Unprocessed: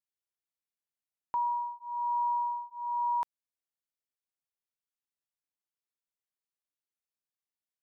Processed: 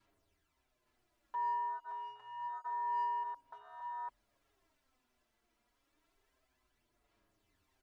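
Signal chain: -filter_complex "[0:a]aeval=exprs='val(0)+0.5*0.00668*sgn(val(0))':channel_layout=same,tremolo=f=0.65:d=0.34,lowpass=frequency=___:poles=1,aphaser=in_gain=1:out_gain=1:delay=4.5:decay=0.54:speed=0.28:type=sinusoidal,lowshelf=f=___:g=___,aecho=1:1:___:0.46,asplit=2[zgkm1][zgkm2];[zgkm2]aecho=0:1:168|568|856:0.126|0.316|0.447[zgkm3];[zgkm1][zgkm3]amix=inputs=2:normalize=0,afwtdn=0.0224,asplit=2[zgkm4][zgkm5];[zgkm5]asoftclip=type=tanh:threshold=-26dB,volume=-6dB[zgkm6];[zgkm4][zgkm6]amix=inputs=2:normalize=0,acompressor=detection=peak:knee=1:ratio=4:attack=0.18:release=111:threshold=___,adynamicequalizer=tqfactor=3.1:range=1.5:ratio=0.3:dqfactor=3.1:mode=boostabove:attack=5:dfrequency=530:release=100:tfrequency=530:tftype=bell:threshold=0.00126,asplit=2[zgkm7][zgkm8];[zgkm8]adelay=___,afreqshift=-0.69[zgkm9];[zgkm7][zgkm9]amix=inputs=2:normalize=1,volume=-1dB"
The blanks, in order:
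1100, 88, 5.5, 3, -34dB, 6.8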